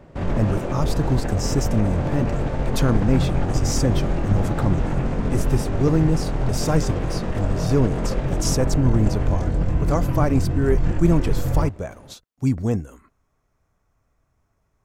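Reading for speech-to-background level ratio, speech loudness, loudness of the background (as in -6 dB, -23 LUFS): 0.5 dB, -24.5 LUFS, -25.0 LUFS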